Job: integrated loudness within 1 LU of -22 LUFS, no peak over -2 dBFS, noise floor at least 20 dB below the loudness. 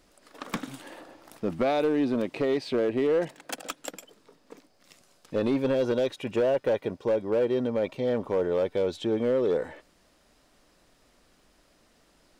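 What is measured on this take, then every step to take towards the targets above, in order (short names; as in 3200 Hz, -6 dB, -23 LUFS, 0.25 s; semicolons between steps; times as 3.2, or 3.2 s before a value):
clipped 1.2%; flat tops at -19.0 dBFS; loudness -27.5 LUFS; peak -19.0 dBFS; loudness target -22.0 LUFS
-> clip repair -19 dBFS; gain +5.5 dB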